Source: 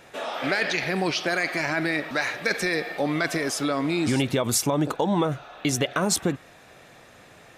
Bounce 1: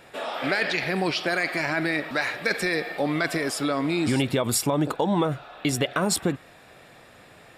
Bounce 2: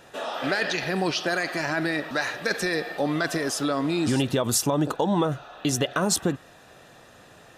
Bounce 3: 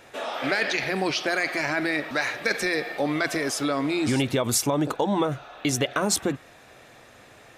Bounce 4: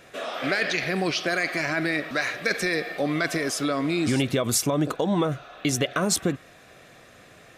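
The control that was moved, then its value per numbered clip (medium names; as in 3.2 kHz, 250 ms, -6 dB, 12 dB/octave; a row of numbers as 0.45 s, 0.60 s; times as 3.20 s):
band-stop, frequency: 6.2 kHz, 2.2 kHz, 170 Hz, 880 Hz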